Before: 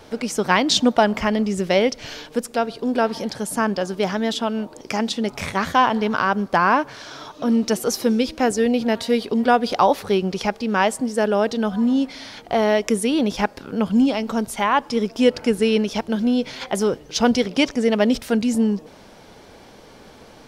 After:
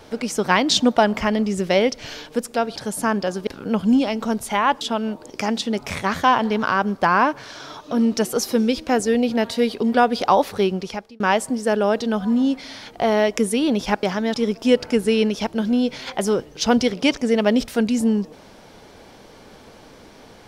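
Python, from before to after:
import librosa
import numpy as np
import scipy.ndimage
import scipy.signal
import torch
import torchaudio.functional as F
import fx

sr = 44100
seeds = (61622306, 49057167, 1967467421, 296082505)

y = fx.edit(x, sr, fx.cut(start_s=2.76, length_s=0.54),
    fx.swap(start_s=4.01, length_s=0.31, other_s=13.54, other_length_s=1.34),
    fx.fade_out_span(start_s=10.17, length_s=0.54), tone=tone)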